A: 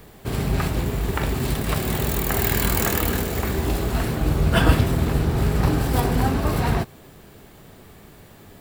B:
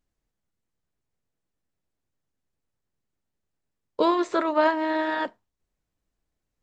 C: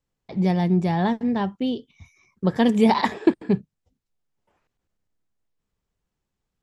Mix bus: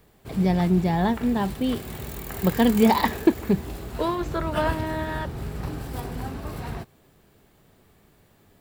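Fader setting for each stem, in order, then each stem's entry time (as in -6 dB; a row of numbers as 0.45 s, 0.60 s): -12.0 dB, -4.5 dB, -0.5 dB; 0.00 s, 0.00 s, 0.00 s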